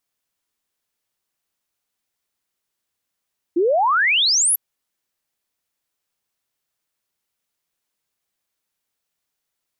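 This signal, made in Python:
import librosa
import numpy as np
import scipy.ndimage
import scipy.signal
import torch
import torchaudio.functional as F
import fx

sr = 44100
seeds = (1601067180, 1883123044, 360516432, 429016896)

y = fx.ess(sr, length_s=1.0, from_hz=320.0, to_hz=12000.0, level_db=-14.0)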